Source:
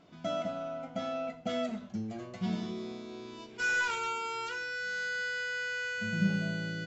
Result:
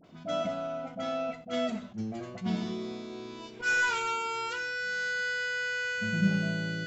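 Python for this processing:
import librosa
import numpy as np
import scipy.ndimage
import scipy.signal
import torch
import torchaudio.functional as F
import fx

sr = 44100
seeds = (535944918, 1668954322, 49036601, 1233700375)

y = fx.dispersion(x, sr, late='highs', ms=43.0, hz=1100.0)
y = fx.attack_slew(y, sr, db_per_s=240.0)
y = y * 10.0 ** (3.0 / 20.0)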